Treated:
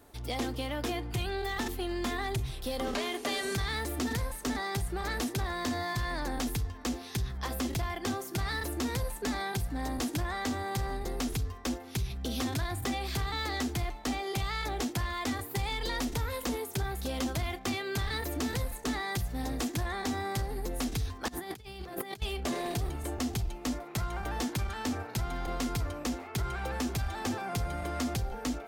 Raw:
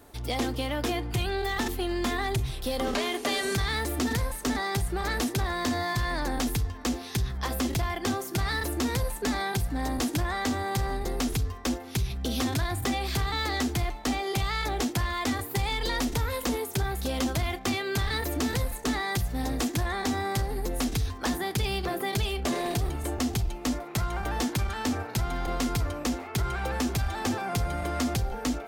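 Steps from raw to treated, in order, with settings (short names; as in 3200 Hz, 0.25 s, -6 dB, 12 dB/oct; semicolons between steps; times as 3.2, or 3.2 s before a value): 21.28–22.22 negative-ratio compressor -35 dBFS, ratio -0.5; gain -4.5 dB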